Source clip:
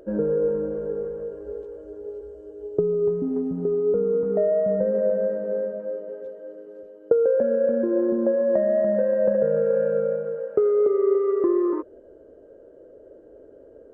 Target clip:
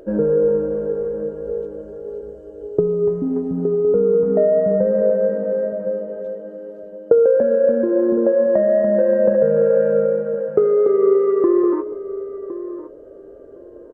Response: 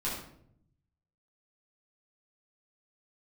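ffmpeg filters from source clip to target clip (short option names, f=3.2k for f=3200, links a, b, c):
-filter_complex "[0:a]asplit=2[a][b];[b]adelay=1061,lowpass=f=1.3k:p=1,volume=-13dB,asplit=2[c][d];[d]adelay=1061,lowpass=f=1.3k:p=1,volume=0.17[e];[a][c][e]amix=inputs=3:normalize=0,asplit=2[f][g];[1:a]atrim=start_sample=2205[h];[g][h]afir=irnorm=-1:irlink=0,volume=-19.5dB[i];[f][i]amix=inputs=2:normalize=0,volume=5dB"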